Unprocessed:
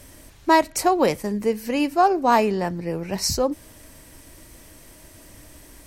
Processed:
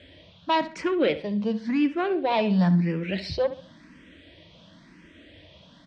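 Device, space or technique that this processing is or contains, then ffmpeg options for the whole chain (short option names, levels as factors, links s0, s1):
barber-pole phaser into a guitar amplifier: -filter_complex "[0:a]asplit=2[s0][s1];[s1]afreqshift=0.95[s2];[s0][s2]amix=inputs=2:normalize=1,asoftclip=type=tanh:threshold=0.168,highpass=98,equalizer=f=120:t=q:w=4:g=-7,equalizer=f=180:t=q:w=4:g=10,equalizer=f=400:t=q:w=4:g=-5,equalizer=f=820:t=q:w=4:g=-8,equalizer=f=1200:t=q:w=4:g=-4,equalizer=f=3400:t=q:w=4:g=8,lowpass=f=3900:w=0.5412,lowpass=f=3900:w=1.3066,asettb=1/sr,asplit=3[s3][s4][s5];[s3]atrim=end=2.594[s6];[s4]atrim=start=2.59:end=3.2,asetpts=PTS-STARTPTS,afade=t=in:d=0.004:c=qsin,afade=t=out:st=0.606:d=0.004:c=qsin,highshelf=f=2800:g=8.5[s7];[s5]atrim=start=3.196[s8];[s6][s7]acrossfade=d=0.004:c1=hsin:c2=qsin[s9];[s9][s8]acrossfade=d=0.004:c1=qsin:c2=hsin,asplit=2[s10][s11];[s11]adelay=68,lowpass=f=4100:p=1,volume=0.211,asplit=2[s12][s13];[s13]adelay=68,lowpass=f=4100:p=1,volume=0.33,asplit=2[s14][s15];[s15]adelay=68,lowpass=f=4100:p=1,volume=0.33[s16];[s10][s12][s14][s16]amix=inputs=4:normalize=0,volume=1.26"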